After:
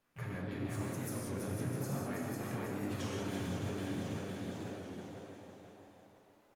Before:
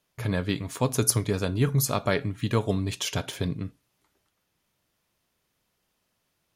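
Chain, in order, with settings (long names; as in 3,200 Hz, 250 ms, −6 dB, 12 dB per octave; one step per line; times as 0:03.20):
high shelf with overshoot 2,400 Hz −6.5 dB, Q 1.5
on a send: repeating echo 499 ms, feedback 41%, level −7.5 dB
on the sum: downward compressor 6 to 1, threshold −36 dBFS, peak gain reduction 17 dB
brickwall limiter −32 dBFS, peak gain reduction 8.5 dB
flanger 0.44 Hz, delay 3.6 ms, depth 8 ms, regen +76%
echo with shifted repeats 325 ms, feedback 51%, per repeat +110 Hz, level −5.5 dB
reverb whose tail is shaped and stops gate 220 ms flat, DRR −3 dB
pitch-shifted copies added +3 semitones −12 dB, +5 semitones −11 dB
wow of a warped record 33 1/3 rpm, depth 100 cents
level +1 dB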